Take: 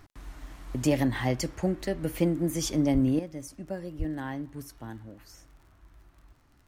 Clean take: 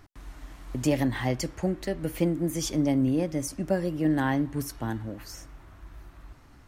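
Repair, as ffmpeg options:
ffmpeg -i in.wav -filter_complex "[0:a]adeclick=threshold=4,asplit=3[link_01][link_02][link_03];[link_01]afade=type=out:start_time=2.93:duration=0.02[link_04];[link_02]highpass=frequency=140:width=0.5412,highpass=frequency=140:width=1.3066,afade=type=in:start_time=2.93:duration=0.02,afade=type=out:start_time=3.05:duration=0.02[link_05];[link_03]afade=type=in:start_time=3.05:duration=0.02[link_06];[link_04][link_05][link_06]amix=inputs=3:normalize=0,asplit=3[link_07][link_08][link_09];[link_07]afade=type=out:start_time=3.98:duration=0.02[link_10];[link_08]highpass=frequency=140:width=0.5412,highpass=frequency=140:width=1.3066,afade=type=in:start_time=3.98:duration=0.02,afade=type=out:start_time=4.1:duration=0.02[link_11];[link_09]afade=type=in:start_time=4.1:duration=0.02[link_12];[link_10][link_11][link_12]amix=inputs=3:normalize=0,asetnsamples=nb_out_samples=441:pad=0,asendcmd='3.19 volume volume 9.5dB',volume=0dB" out.wav

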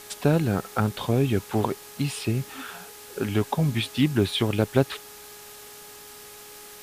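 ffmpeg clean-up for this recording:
ffmpeg -i in.wav -af "adeclick=threshold=4,bandreject=frequency=416.4:width_type=h:width=4,bandreject=frequency=832.8:width_type=h:width=4,bandreject=frequency=1249.2:width_type=h:width=4,bandreject=frequency=1665.6:width_type=h:width=4,afwtdn=0.0063" out.wav

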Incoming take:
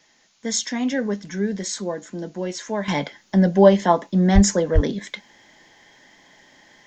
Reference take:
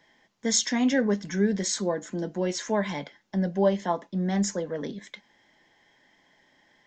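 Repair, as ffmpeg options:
ffmpeg -i in.wav -filter_complex "[0:a]asplit=3[link_01][link_02][link_03];[link_01]afade=type=out:start_time=4.34:duration=0.02[link_04];[link_02]highpass=frequency=140:width=0.5412,highpass=frequency=140:width=1.3066,afade=type=in:start_time=4.34:duration=0.02,afade=type=out:start_time=4.46:duration=0.02[link_05];[link_03]afade=type=in:start_time=4.46:duration=0.02[link_06];[link_04][link_05][link_06]amix=inputs=3:normalize=0,asplit=3[link_07][link_08][link_09];[link_07]afade=type=out:start_time=4.74:duration=0.02[link_10];[link_08]highpass=frequency=140:width=0.5412,highpass=frequency=140:width=1.3066,afade=type=in:start_time=4.74:duration=0.02,afade=type=out:start_time=4.86:duration=0.02[link_11];[link_09]afade=type=in:start_time=4.86:duration=0.02[link_12];[link_10][link_11][link_12]amix=inputs=3:normalize=0,agate=range=-21dB:threshold=-46dB,asetnsamples=nb_out_samples=441:pad=0,asendcmd='2.88 volume volume -10dB',volume=0dB" out.wav

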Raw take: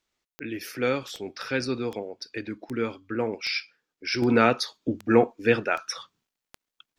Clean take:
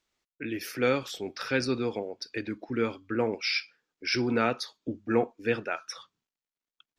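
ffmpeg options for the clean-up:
ffmpeg -i in.wav -af "adeclick=threshold=4,asetnsamples=nb_out_samples=441:pad=0,asendcmd='4.22 volume volume -6.5dB',volume=0dB" out.wav

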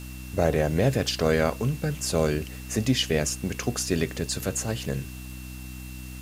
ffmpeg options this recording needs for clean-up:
ffmpeg -i in.wav -af "bandreject=frequency=63.1:width_type=h:width=4,bandreject=frequency=126.2:width_type=h:width=4,bandreject=frequency=189.3:width_type=h:width=4,bandreject=frequency=252.4:width_type=h:width=4,bandreject=frequency=315.5:width_type=h:width=4,bandreject=frequency=2700:width=30,afwtdn=0.0045" out.wav

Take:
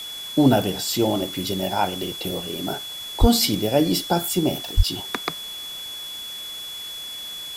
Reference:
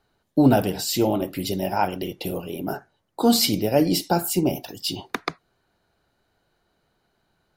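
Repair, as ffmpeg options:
ffmpeg -i in.wav -filter_complex "[0:a]bandreject=frequency=3400:width=30,asplit=3[link_01][link_02][link_03];[link_01]afade=type=out:start_time=3.2:duration=0.02[link_04];[link_02]highpass=frequency=140:width=0.5412,highpass=frequency=140:width=1.3066,afade=type=in:start_time=3.2:duration=0.02,afade=type=out:start_time=3.32:duration=0.02[link_05];[link_03]afade=type=in:start_time=3.32:duration=0.02[link_06];[link_04][link_05][link_06]amix=inputs=3:normalize=0,asplit=3[link_07][link_08][link_09];[link_07]afade=type=out:start_time=4.76:duration=0.02[link_10];[link_08]highpass=frequency=140:width=0.5412,highpass=frequency=140:width=1.3066,afade=type=in:start_time=4.76:duration=0.02,afade=type=out:start_time=4.88:duration=0.02[link_11];[link_09]afade=type=in:start_time=4.88:duration=0.02[link_12];[link_10][link_11][link_12]amix=inputs=3:normalize=0,afftdn=noise_reduction=30:noise_floor=-34" out.wav

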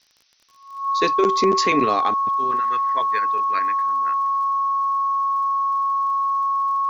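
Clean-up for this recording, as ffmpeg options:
ffmpeg -i in.wav -af "adeclick=threshold=4,bandreject=frequency=1100:width=30,agate=range=-21dB:threshold=-32dB" out.wav

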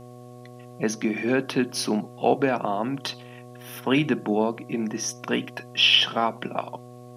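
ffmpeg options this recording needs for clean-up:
ffmpeg -i in.wav -af "bandreject=frequency=122.8:width_type=h:width=4,bandreject=frequency=245.6:width_type=h:width=4,bandreject=frequency=368.4:width_type=h:width=4,bandreject=frequency=491.2:width_type=h:width=4,bandreject=frequency=614:width_type=h:width=4,bandreject=frequency=736.8:width_type=h:width=4,bandreject=frequency=1100:width=30,agate=range=-21dB:threshold=-36dB" out.wav

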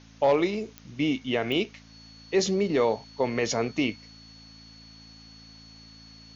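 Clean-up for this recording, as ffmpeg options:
ffmpeg -i in.wav -af "adeclick=threshold=4,bandreject=frequency=55:width_type=h:width=4,bandreject=frequency=110:width_type=h:width=4,bandreject=frequency=165:width_type=h:width=4,bandreject=frequency=220:width_type=h:width=4,bandreject=frequency=275:width_type=h:width=4,bandreject=frequency=4400:width=30,afwtdn=0.002" out.wav

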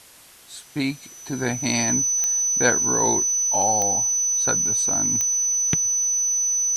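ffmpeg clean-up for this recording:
ffmpeg -i in.wav -af "adeclick=threshold=4,bandreject=frequency=6000:width=30,afftdn=noise_reduction=26:noise_floor=-44" out.wav

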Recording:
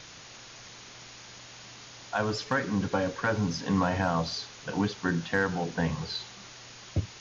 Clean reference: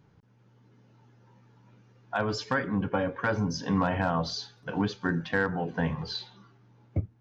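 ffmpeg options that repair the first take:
ffmpeg -i in.wav -af "afwtdn=0.0071" out.wav

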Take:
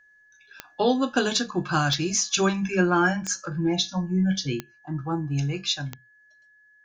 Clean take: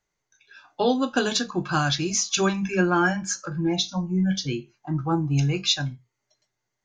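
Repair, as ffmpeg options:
ffmpeg -i in.wav -af "adeclick=threshold=4,bandreject=frequency=1700:width=30,asetnsamples=nb_out_samples=441:pad=0,asendcmd='4.6 volume volume 4dB',volume=0dB" out.wav

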